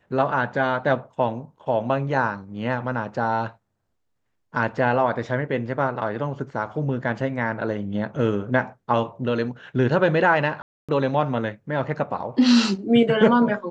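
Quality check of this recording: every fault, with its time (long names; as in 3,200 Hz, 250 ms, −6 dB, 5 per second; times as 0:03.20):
0:10.62–0:10.89: drop-out 266 ms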